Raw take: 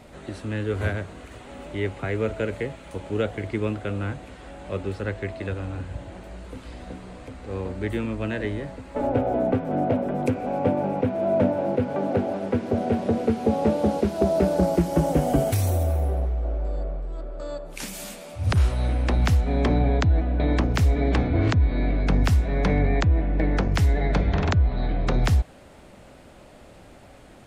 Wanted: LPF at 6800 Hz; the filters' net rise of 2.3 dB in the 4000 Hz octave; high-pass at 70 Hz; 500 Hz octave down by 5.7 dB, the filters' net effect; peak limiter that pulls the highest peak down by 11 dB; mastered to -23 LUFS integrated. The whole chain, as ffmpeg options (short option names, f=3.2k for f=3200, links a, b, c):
-af "highpass=70,lowpass=6.8k,equalizer=f=500:t=o:g=-7.5,equalizer=f=4k:t=o:g=3.5,volume=7dB,alimiter=limit=-12.5dB:level=0:latency=1"